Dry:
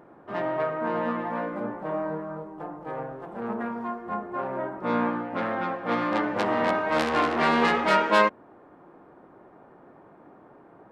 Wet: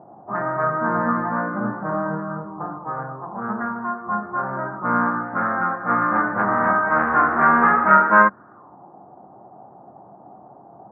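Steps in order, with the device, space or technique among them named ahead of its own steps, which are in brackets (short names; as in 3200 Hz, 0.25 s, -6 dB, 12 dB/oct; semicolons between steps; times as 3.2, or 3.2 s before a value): 0.63–2.78 low shelf 470 Hz +5.5 dB; envelope filter bass rig (envelope low-pass 710–1500 Hz up, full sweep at -29 dBFS; speaker cabinet 68–2000 Hz, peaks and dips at 88 Hz +8 dB, 130 Hz +10 dB, 200 Hz +8 dB, 480 Hz -4 dB, 750 Hz +3 dB, 1200 Hz +5 dB); gain -1 dB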